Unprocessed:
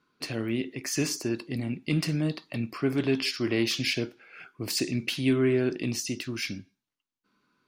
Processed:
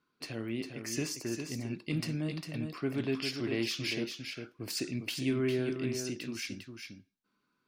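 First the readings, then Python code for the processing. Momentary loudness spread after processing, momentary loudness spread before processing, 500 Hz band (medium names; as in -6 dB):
9 LU, 9 LU, -6.0 dB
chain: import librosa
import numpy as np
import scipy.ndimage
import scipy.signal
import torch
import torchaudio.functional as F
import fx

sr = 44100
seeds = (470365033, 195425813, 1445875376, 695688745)

y = x + 10.0 ** (-6.5 / 20.0) * np.pad(x, (int(402 * sr / 1000.0), 0))[:len(x)]
y = F.gain(torch.from_numpy(y), -7.0).numpy()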